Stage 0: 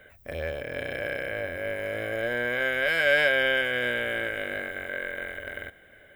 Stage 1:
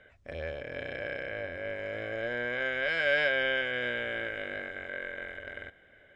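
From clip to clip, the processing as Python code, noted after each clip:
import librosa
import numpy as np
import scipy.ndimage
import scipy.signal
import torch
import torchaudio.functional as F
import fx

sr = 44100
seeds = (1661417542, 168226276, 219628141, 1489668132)

y = scipy.signal.sosfilt(scipy.signal.butter(4, 6300.0, 'lowpass', fs=sr, output='sos'), x)
y = y * 10.0 ** (-5.0 / 20.0)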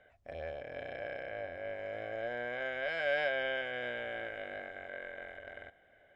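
y = fx.peak_eq(x, sr, hz=720.0, db=12.0, octaves=0.52)
y = y * 10.0 ** (-8.0 / 20.0)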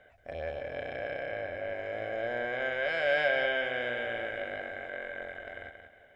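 y = fx.echo_feedback(x, sr, ms=179, feedback_pct=27, wet_db=-7.5)
y = y * 10.0 ** (4.5 / 20.0)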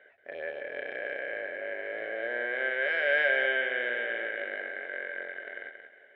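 y = fx.cabinet(x, sr, low_hz=360.0, low_slope=12, high_hz=3600.0, hz=(400.0, 730.0, 1100.0, 1800.0), db=(7, -7, -4, 9))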